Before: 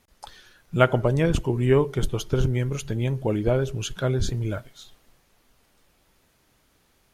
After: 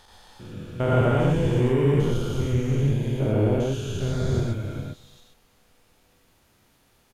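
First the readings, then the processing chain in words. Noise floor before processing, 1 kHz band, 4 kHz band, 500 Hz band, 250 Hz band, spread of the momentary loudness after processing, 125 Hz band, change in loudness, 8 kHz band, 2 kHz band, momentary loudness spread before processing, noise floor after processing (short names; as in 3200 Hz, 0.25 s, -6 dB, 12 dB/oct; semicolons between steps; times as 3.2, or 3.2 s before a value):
-65 dBFS, -1.5 dB, -3.0 dB, -0.5 dB, +2.0 dB, 14 LU, +2.0 dB, +1.0 dB, -5.0 dB, -3.5 dB, 9 LU, -62 dBFS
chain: stepped spectrum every 0.4 s; echo 0.244 s -23.5 dB; non-linear reverb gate 0.15 s rising, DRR -1 dB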